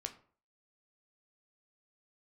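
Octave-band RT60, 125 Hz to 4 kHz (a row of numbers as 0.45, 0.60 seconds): 0.50, 0.45, 0.50, 0.45, 0.35, 0.30 seconds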